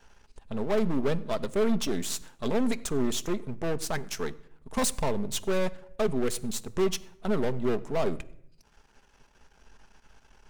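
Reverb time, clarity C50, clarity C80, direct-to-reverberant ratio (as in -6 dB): 0.75 s, 20.0 dB, 21.5 dB, 10.0 dB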